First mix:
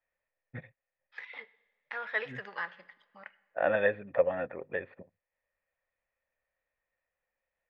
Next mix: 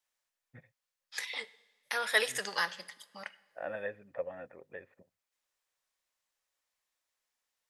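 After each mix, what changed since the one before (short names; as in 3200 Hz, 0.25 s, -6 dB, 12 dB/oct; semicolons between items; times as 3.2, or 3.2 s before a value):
first voice -11.5 dB; second voice: remove ladder low-pass 2700 Hz, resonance 25%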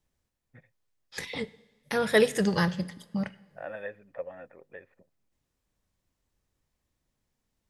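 second voice: remove HPF 1000 Hz 12 dB/oct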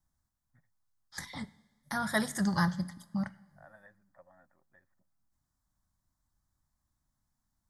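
first voice -11.5 dB; master: add fixed phaser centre 1100 Hz, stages 4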